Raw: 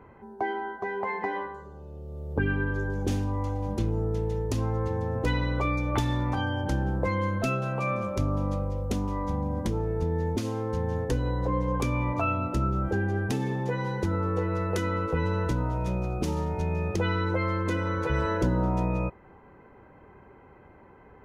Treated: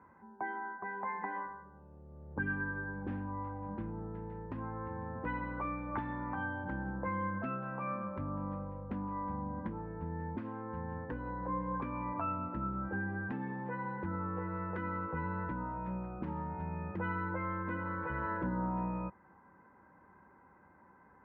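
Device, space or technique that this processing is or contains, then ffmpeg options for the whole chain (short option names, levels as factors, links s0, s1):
bass cabinet: -af "highpass=89,equalizer=f=120:t=q:w=4:g=-9,equalizer=f=190:t=q:w=4:g=4,equalizer=f=420:t=q:w=4:g=-9,equalizer=f=670:t=q:w=4:g=-4,equalizer=f=980:t=q:w=4:g=6,equalizer=f=1600:t=q:w=4:g=6,lowpass=f=2000:w=0.5412,lowpass=f=2000:w=1.3066,volume=0.355"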